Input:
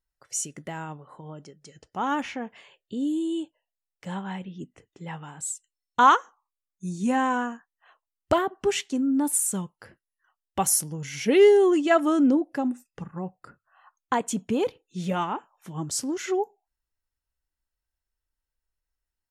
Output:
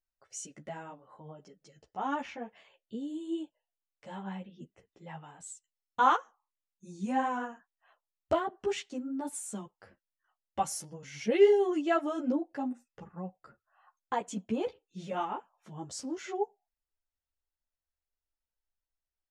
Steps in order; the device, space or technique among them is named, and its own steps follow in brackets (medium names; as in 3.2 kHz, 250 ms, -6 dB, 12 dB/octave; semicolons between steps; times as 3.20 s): string-machine ensemble chorus (three-phase chorus; low-pass 6.9 kHz 12 dB/octave); peaking EQ 640 Hz +6 dB 0.72 oct; trim -6 dB